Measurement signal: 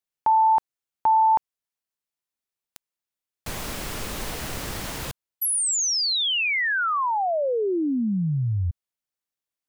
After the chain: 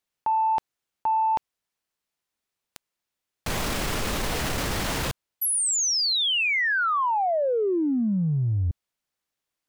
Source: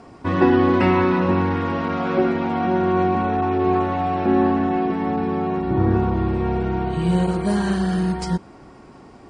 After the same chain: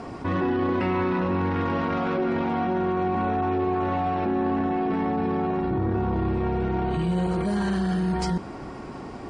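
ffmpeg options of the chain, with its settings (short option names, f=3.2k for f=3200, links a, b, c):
-af "highshelf=f=7.7k:g=-6.5,areverse,acompressor=threshold=-30dB:ratio=5:attack=1.5:release=28:knee=1:detection=rms,areverse,asoftclip=type=tanh:threshold=-19dB,volume=7.5dB"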